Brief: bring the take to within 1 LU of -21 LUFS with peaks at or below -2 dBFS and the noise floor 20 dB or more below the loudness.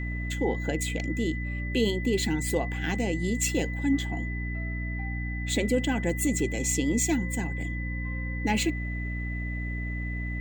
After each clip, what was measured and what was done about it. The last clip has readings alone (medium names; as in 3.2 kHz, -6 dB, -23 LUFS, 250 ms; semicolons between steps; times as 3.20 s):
hum 60 Hz; highest harmonic 300 Hz; hum level -30 dBFS; steady tone 2 kHz; tone level -37 dBFS; loudness -29.0 LUFS; peak level -13.0 dBFS; loudness target -21.0 LUFS
-> hum notches 60/120/180/240/300 Hz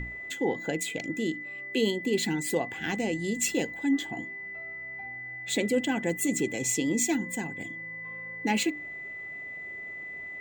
hum not found; steady tone 2 kHz; tone level -37 dBFS
-> band-stop 2 kHz, Q 30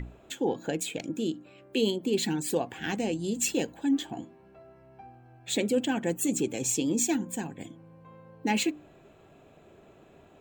steady tone not found; loudness -29.5 LUFS; peak level -14.5 dBFS; loudness target -21.0 LUFS
-> trim +8.5 dB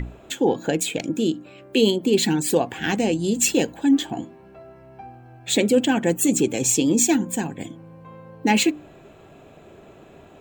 loudness -21.0 LUFS; peak level -6.0 dBFS; noise floor -48 dBFS